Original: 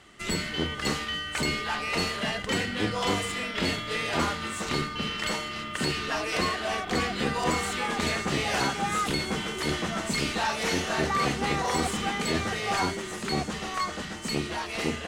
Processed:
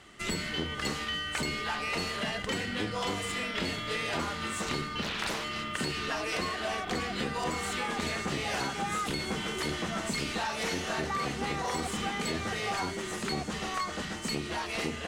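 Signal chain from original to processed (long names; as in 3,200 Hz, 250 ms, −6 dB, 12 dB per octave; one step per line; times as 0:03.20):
downward compressor, threshold −29 dBFS, peak gain reduction 8 dB
0:05.02–0:05.44: highs frequency-modulated by the lows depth 0.97 ms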